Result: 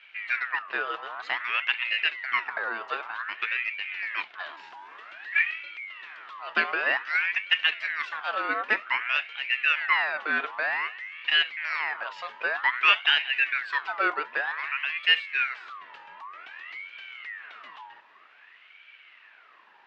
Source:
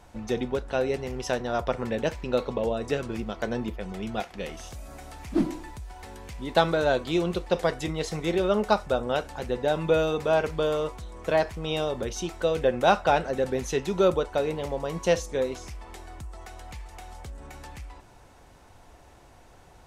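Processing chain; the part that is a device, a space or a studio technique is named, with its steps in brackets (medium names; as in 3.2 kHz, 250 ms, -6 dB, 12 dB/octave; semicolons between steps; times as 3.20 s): voice changer toy (ring modulator with a swept carrier 1.6 kHz, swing 45%, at 0.53 Hz; cabinet simulation 520–3800 Hz, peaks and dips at 520 Hz -6 dB, 810 Hz -4 dB, 1.8 kHz +3 dB, 2.7 kHz +6 dB)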